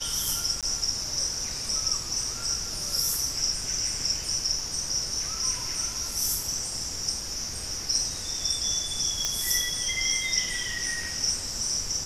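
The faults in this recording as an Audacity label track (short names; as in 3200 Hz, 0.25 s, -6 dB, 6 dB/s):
0.610000	0.630000	gap 17 ms
9.250000	9.250000	pop -11 dBFS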